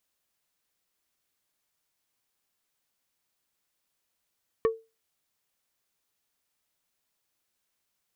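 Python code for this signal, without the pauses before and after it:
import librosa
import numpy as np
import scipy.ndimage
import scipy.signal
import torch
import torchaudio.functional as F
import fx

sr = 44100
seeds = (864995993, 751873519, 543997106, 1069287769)

y = fx.strike_wood(sr, length_s=0.45, level_db=-17.0, body='plate', hz=449.0, decay_s=0.26, tilt_db=7.5, modes=5)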